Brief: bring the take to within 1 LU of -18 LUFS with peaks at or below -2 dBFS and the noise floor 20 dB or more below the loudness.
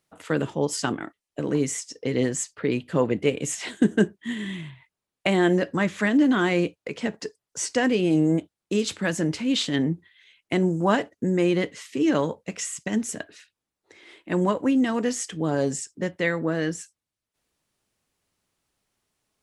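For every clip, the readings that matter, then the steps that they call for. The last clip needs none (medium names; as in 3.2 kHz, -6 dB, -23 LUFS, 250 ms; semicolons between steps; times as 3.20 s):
loudness -25.0 LUFS; peak level -6.5 dBFS; loudness target -18.0 LUFS
-> trim +7 dB; peak limiter -2 dBFS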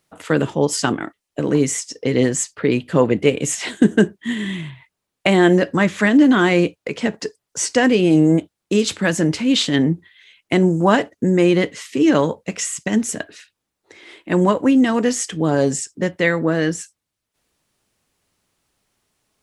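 loudness -18.0 LUFS; peak level -2.0 dBFS; noise floor -81 dBFS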